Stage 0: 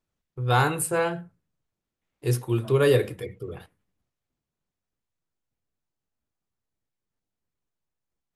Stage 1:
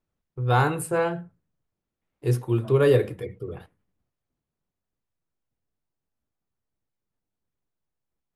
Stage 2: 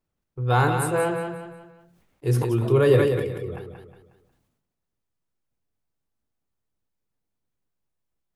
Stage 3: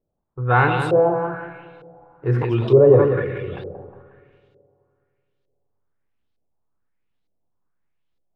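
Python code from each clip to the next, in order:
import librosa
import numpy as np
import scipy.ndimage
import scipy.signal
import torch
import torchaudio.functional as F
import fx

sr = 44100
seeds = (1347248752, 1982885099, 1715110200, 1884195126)

y1 = fx.high_shelf(x, sr, hz=2200.0, db=-8.5)
y1 = F.gain(torch.from_numpy(y1), 1.5).numpy()
y2 = fx.echo_feedback(y1, sr, ms=181, feedback_pct=28, wet_db=-6.5)
y2 = fx.sustainer(y2, sr, db_per_s=43.0)
y3 = fx.rev_spring(y2, sr, rt60_s=2.7, pass_ms=(42, 53), chirp_ms=25, drr_db=14.0)
y3 = fx.filter_lfo_lowpass(y3, sr, shape='saw_up', hz=1.1, low_hz=500.0, high_hz=4200.0, q=2.5)
y3 = F.gain(torch.from_numpy(y3), 2.0).numpy()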